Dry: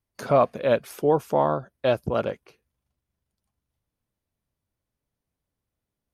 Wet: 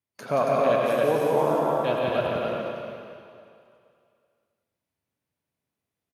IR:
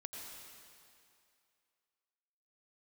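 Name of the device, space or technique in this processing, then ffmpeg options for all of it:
stadium PA: -filter_complex "[0:a]highpass=120,equalizer=f=2400:t=o:w=0.86:g=3.5,aecho=1:1:177.8|277:0.708|0.708[s0];[1:a]atrim=start_sample=2205[s1];[s0][s1]afir=irnorm=-1:irlink=0"

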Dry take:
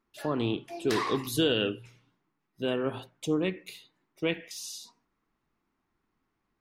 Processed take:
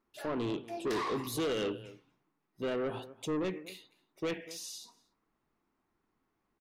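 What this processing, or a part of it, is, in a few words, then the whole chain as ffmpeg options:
saturation between pre-emphasis and de-emphasis: -filter_complex "[0:a]equalizer=f=540:t=o:w=2.3:g=5,highshelf=f=12000:g=6.5,asplit=2[s0][s1];[s1]adelay=239.1,volume=0.0794,highshelf=f=4000:g=-5.38[s2];[s0][s2]amix=inputs=2:normalize=0,asoftclip=type=tanh:threshold=0.0531,highshelf=f=12000:g=-6.5,volume=0.668"

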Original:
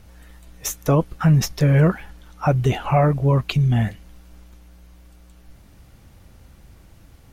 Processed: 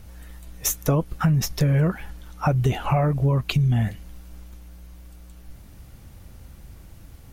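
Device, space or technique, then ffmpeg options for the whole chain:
ASMR close-microphone chain: -af "lowshelf=f=180:g=4.5,acompressor=threshold=0.141:ratio=6,highshelf=f=9100:g=7.5"

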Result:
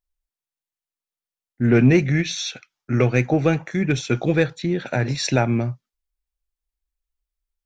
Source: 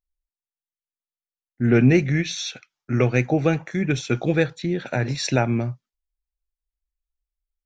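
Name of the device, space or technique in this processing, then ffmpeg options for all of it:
parallel distortion: -filter_complex "[0:a]asplit=2[s0][s1];[s1]asoftclip=type=hard:threshold=0.141,volume=0.237[s2];[s0][s2]amix=inputs=2:normalize=0"

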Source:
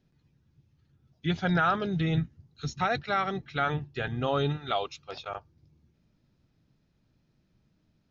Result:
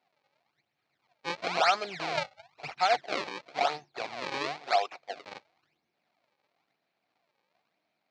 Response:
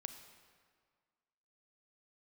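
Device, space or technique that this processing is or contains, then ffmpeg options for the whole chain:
circuit-bent sampling toy: -filter_complex "[0:a]asplit=3[s0][s1][s2];[s0]afade=t=out:st=2.14:d=0.02[s3];[s1]asubboost=boost=9:cutoff=110,afade=t=in:st=2.14:d=0.02,afade=t=out:st=2.74:d=0.02[s4];[s2]afade=t=in:st=2.74:d=0.02[s5];[s3][s4][s5]amix=inputs=3:normalize=0,acrusher=samples=36:mix=1:aa=0.000001:lfo=1:lforange=57.6:lforate=0.98,highpass=540,equalizer=f=720:t=q:w=4:g=10,equalizer=f=2300:t=q:w=4:g=8,equalizer=f=4200:t=q:w=4:g=7,lowpass=f=5700:w=0.5412,lowpass=f=5700:w=1.3066,volume=0.841"

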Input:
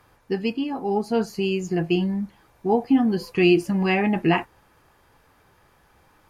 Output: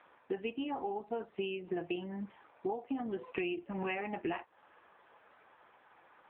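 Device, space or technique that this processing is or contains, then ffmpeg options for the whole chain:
voicemail: -af "highpass=400,lowpass=3200,acompressor=threshold=0.02:ratio=12,volume=1.19" -ar 8000 -c:a libopencore_amrnb -b:a 6700

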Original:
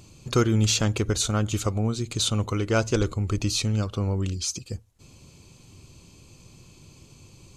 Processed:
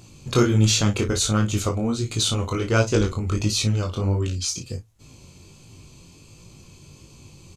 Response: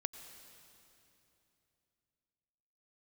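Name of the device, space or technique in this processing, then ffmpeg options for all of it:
double-tracked vocal: -filter_complex "[0:a]asplit=2[s0][s1];[s1]adelay=34,volume=0.376[s2];[s0][s2]amix=inputs=2:normalize=0,flanger=delay=18:depth=4.6:speed=1.4,volume=1.88"

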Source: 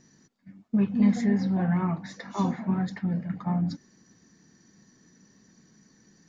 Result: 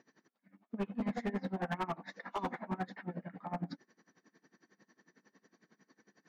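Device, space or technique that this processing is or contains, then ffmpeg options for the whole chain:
helicopter radio: -af "highpass=380,lowpass=2600,aeval=exprs='val(0)*pow(10,-23*(0.5-0.5*cos(2*PI*11*n/s))/20)':c=same,asoftclip=type=hard:threshold=0.0188,volume=1.68"

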